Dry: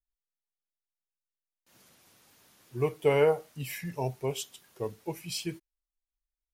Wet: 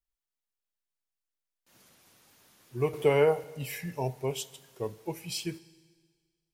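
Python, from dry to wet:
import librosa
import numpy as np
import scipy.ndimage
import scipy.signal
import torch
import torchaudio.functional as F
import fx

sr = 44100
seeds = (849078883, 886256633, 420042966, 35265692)

y = fx.rev_schroeder(x, sr, rt60_s=1.7, comb_ms=38, drr_db=19.0)
y = fx.band_squash(y, sr, depth_pct=40, at=(2.93, 3.44))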